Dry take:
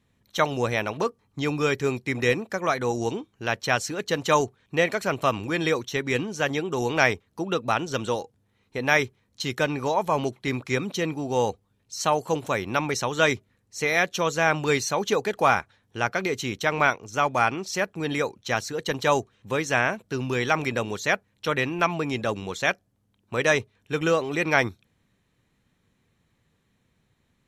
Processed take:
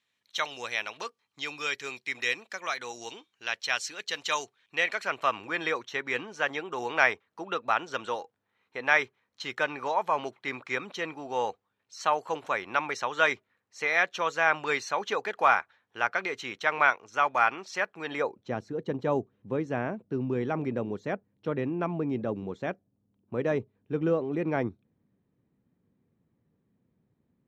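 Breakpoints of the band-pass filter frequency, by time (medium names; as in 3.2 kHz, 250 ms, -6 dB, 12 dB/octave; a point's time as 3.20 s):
band-pass filter, Q 0.82
4.45 s 3.4 kHz
5.46 s 1.4 kHz
18.07 s 1.4 kHz
18.53 s 250 Hz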